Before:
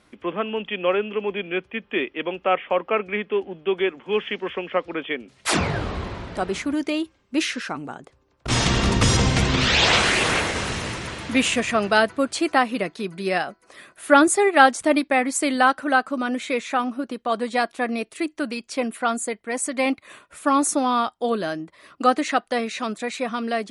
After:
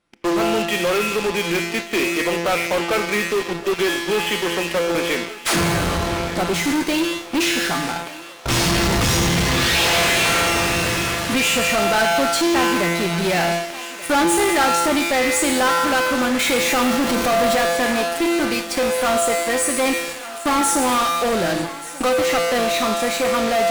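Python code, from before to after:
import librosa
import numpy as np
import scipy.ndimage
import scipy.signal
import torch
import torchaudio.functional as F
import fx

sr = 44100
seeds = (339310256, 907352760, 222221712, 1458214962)

p1 = fx.zero_step(x, sr, step_db=-25.0, at=(16.39, 17.58))
p2 = fx.comb_fb(p1, sr, f0_hz=170.0, decay_s=1.2, harmonics='all', damping=0.0, mix_pct=90)
p3 = fx.fuzz(p2, sr, gain_db=52.0, gate_db=-51.0)
p4 = p2 + (p3 * 10.0 ** (-8.5 / 20.0))
p5 = fx.echo_thinned(p4, sr, ms=1183, feedback_pct=76, hz=500.0, wet_db=-15)
p6 = fx.rev_schroeder(p5, sr, rt60_s=1.4, comb_ms=25, drr_db=14.0)
y = p6 * 10.0 ** (3.5 / 20.0)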